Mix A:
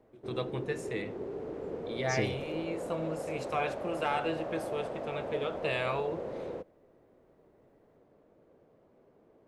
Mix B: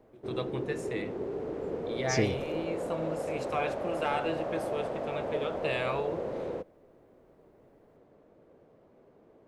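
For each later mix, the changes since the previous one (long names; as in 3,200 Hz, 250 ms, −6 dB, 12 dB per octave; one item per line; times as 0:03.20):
second voice +5.5 dB
background +3.5 dB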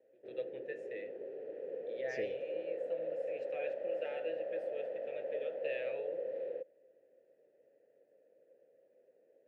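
master: add formant filter e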